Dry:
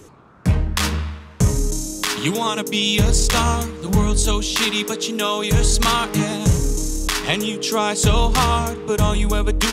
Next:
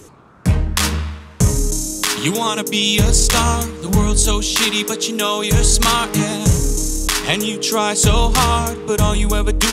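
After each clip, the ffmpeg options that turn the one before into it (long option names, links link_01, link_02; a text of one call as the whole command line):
ffmpeg -i in.wav -af "equalizer=frequency=10000:width_type=o:width=1.4:gain=5,volume=2dB" out.wav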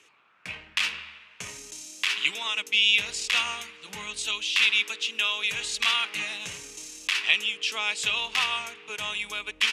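ffmpeg -i in.wav -af "bandpass=frequency=2600:width_type=q:width=3.5:csg=0,volume=1.5dB" out.wav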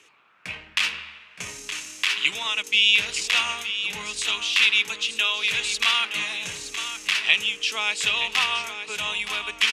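ffmpeg -i in.wav -af "aecho=1:1:919:0.316,volume=3dB" out.wav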